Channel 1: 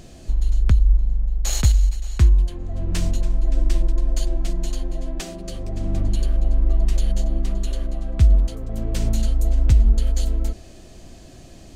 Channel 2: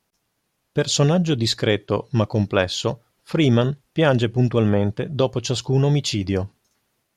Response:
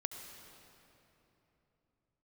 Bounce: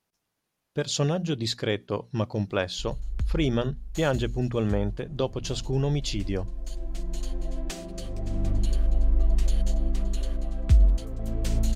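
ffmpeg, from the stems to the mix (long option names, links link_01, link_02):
-filter_complex "[0:a]adelay=2500,volume=-4dB[link_01];[1:a]bandreject=frequency=60:width_type=h:width=6,bandreject=frequency=120:width_type=h:width=6,bandreject=frequency=180:width_type=h:width=6,bandreject=frequency=240:width_type=h:width=6,volume=-7.5dB,asplit=2[link_02][link_03];[link_03]apad=whole_len=628648[link_04];[link_01][link_04]sidechaincompress=threshold=-38dB:ratio=5:attack=33:release=1020[link_05];[link_05][link_02]amix=inputs=2:normalize=0"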